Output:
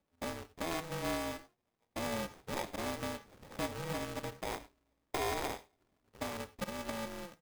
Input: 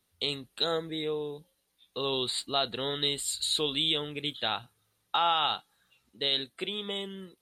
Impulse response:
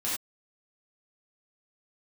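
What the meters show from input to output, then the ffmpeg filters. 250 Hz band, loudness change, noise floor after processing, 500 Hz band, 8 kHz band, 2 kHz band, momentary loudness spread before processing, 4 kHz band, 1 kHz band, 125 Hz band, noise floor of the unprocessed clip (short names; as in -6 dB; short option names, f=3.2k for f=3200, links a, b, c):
-2.5 dB, -9.5 dB, -82 dBFS, -6.0 dB, -7.5 dB, -3.5 dB, 10 LU, -18.0 dB, -7.5 dB, -2.0 dB, -76 dBFS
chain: -filter_complex "[0:a]lowpass=1.1k,equalizer=f=82:t=o:w=0.53:g=-6.5,aecho=1:1:2.5:0.46,acompressor=threshold=-39dB:ratio=2,acrusher=samples=31:mix=1:aa=0.000001,asplit=2[a][b];[1:a]atrim=start_sample=2205[c];[b][c]afir=irnorm=-1:irlink=0,volume=-18.5dB[d];[a][d]amix=inputs=2:normalize=0,aeval=exprs='val(0)*sgn(sin(2*PI*170*n/s))':c=same,volume=-1dB"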